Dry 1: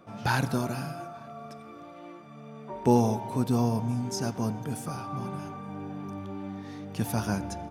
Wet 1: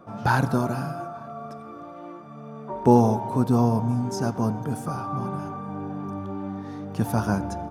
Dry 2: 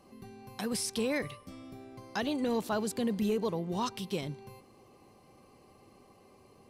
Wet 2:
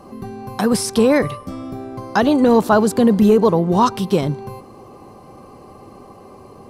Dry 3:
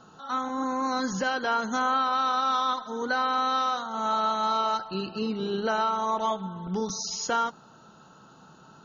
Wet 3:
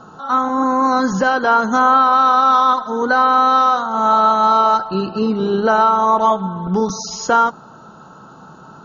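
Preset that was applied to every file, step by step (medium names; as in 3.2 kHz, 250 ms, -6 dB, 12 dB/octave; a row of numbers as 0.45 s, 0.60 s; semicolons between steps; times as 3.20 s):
resonant high shelf 1.7 kHz -6.5 dB, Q 1.5; peak normalisation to -3 dBFS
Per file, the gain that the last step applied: +5.0 dB, +18.0 dB, +12.0 dB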